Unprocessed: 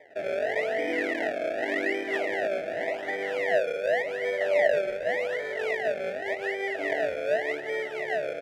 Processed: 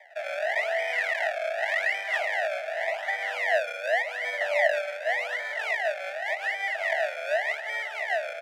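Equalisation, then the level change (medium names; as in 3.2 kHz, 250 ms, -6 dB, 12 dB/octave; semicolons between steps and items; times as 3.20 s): steep high-pass 650 Hz 48 dB/octave; +4.0 dB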